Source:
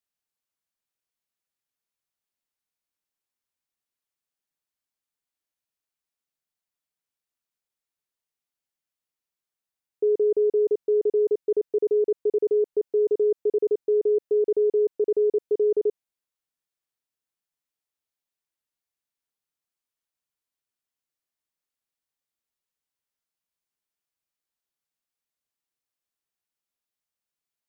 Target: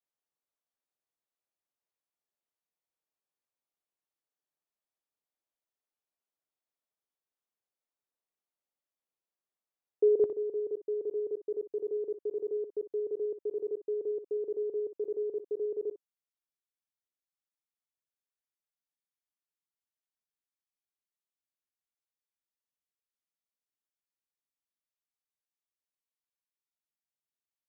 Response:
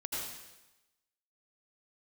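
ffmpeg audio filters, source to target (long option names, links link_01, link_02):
-filter_complex "[0:a]asetnsamples=nb_out_samples=441:pad=0,asendcmd='10.24 equalizer g 2',equalizer=frequency=560:width=0.43:gain=12.5[link_01];[1:a]atrim=start_sample=2205,atrim=end_sample=3528,asetrate=57330,aresample=44100[link_02];[link_01][link_02]afir=irnorm=-1:irlink=0,volume=-6.5dB"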